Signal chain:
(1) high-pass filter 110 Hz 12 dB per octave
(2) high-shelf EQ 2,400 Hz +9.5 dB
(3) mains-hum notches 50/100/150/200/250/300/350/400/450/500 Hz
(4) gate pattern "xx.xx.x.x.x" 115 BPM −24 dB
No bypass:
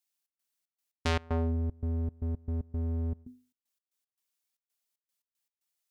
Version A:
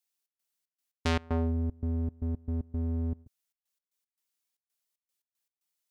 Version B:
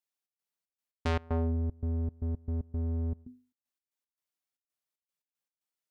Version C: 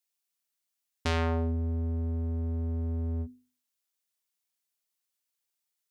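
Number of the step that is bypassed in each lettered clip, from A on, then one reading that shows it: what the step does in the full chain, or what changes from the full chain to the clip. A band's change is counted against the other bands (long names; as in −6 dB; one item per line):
3, 250 Hz band +3.0 dB
2, 4 kHz band −6.0 dB
4, change in crest factor −2.0 dB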